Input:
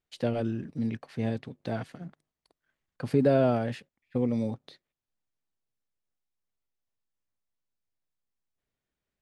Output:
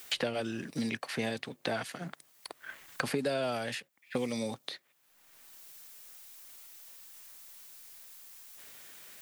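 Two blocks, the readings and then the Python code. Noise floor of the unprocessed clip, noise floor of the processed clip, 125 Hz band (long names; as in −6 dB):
below −85 dBFS, −69 dBFS, −11.5 dB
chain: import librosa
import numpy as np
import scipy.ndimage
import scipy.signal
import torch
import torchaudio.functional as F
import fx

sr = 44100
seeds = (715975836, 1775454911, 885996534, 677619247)

y = fx.tilt_eq(x, sr, slope=4.5)
y = fx.band_squash(y, sr, depth_pct=100)
y = y * librosa.db_to_amplitude(2.0)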